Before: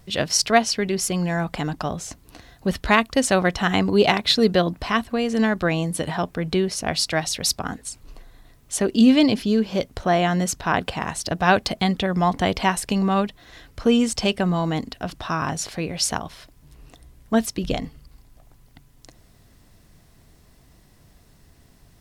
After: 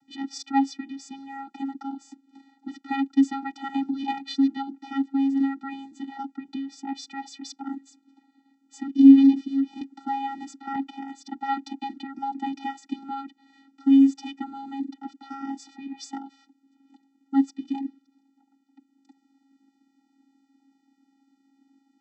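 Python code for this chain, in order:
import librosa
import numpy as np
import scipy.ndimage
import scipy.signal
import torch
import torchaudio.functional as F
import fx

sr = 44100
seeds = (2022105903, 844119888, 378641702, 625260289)

y = fx.vocoder(x, sr, bands=16, carrier='square', carrier_hz=273.0)
y = fx.band_squash(y, sr, depth_pct=40, at=(9.81, 10.76))
y = y * librosa.db_to_amplitude(-2.5)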